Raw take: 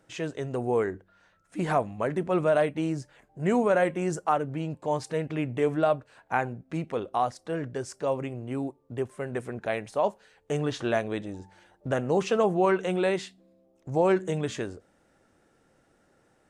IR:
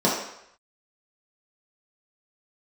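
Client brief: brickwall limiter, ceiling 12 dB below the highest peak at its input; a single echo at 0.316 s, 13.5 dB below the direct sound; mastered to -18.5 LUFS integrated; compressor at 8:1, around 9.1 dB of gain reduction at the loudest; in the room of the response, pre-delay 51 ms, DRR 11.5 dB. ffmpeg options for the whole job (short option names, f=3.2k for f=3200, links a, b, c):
-filter_complex "[0:a]acompressor=threshold=-28dB:ratio=8,alimiter=level_in=3dB:limit=-24dB:level=0:latency=1,volume=-3dB,aecho=1:1:316:0.211,asplit=2[a][b];[1:a]atrim=start_sample=2205,adelay=51[c];[b][c]afir=irnorm=-1:irlink=0,volume=-29dB[d];[a][d]amix=inputs=2:normalize=0,volume=18dB"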